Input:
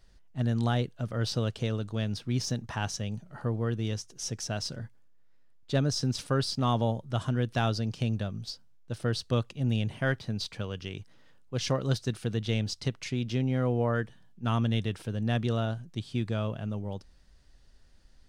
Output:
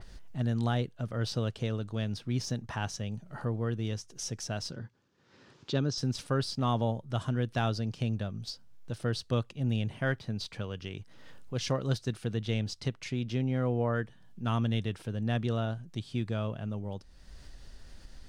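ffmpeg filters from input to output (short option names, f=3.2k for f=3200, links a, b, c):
-filter_complex "[0:a]asettb=1/sr,asplit=3[a][b][c];[a]atrim=end=4.714[d];[b]atrim=start=4.71:end=5.98,asetpts=PTS-STARTPTS,afade=t=in:d=0.004:c=qsin,afade=t=out:st=1.266:d=0.004:c=qsin,highpass=110,equalizer=f=370:t=q:w=4:g=4,equalizer=f=650:t=q:w=4:g=-7,equalizer=f=2k:t=q:w=4:g=-5,lowpass=f=6.4k:w=0.5412,lowpass=f=6.4k:w=1.3066[e];[c]atrim=start=5.976[f];[d][e]acrossfade=d=0.004:c1=hsin:c2=qsin[g];[g][f]acrossfade=d=0.004:c1=qsin:c2=hsin,acompressor=mode=upward:threshold=-32dB:ratio=2.5,adynamicequalizer=threshold=0.00316:dfrequency=3200:dqfactor=0.7:tfrequency=3200:tqfactor=0.7:attack=5:release=100:ratio=0.375:range=1.5:mode=cutabove:tftype=highshelf,volume=-2dB"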